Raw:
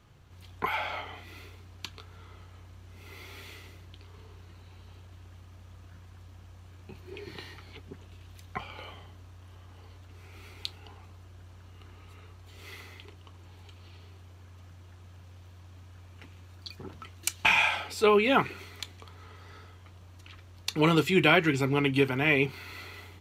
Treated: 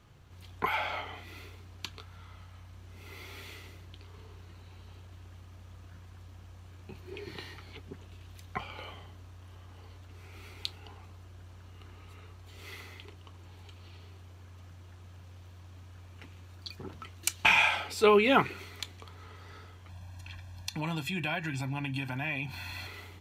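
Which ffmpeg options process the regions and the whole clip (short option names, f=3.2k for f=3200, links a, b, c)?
-filter_complex "[0:a]asettb=1/sr,asplit=3[a][b][c];[a]atrim=end=2.034[d];[b]atrim=start=2.03:end=2.74,asetpts=PTS-STARTPTS,afade=t=in:d=0.004:c=qsin,afade=t=out:st=0.706:d=0.004:c=qsin,equalizer=f=390:t=o:w=0.52:g=-11,bandreject=f=7k:w=20[e];[c]atrim=start=2.736[f];[d][e]acrossfade=d=0.004:c1=hsin:c2=qsin[g];[g][f]acrossfade=d=0.004:c1=qsin:c2=hsin,asettb=1/sr,asplit=3[h][i][j];[h]atrim=end=19.894[k];[i]atrim=start=19.89:end=22.87,asetpts=PTS-STARTPTS,afade=t=in:d=0.004:c=qsin,afade=t=out:st=2.976:d=0.004:c=qsin,aecho=1:1:1.2:0.91,atrim=end_sample=131418,acompressor=threshold=-34dB:ratio=3:attack=3.2:release=140:knee=1:detection=peak[l];[j]atrim=start=22.866[m];[k][l]acrossfade=d=0.004:c1=hsin:c2=qsin[n];[n][m]acrossfade=d=0.004:c1=qsin:c2=hsin"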